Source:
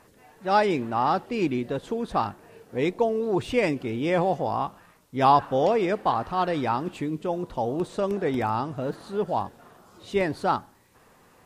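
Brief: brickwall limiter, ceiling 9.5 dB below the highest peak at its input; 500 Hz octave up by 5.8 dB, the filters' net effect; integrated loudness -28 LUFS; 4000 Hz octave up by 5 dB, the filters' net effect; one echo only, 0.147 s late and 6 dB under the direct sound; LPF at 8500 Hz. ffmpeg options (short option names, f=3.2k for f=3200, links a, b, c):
-af "lowpass=8.5k,equalizer=f=500:t=o:g=7,equalizer=f=4k:t=o:g=6.5,alimiter=limit=-13.5dB:level=0:latency=1,aecho=1:1:147:0.501,volume=-4.5dB"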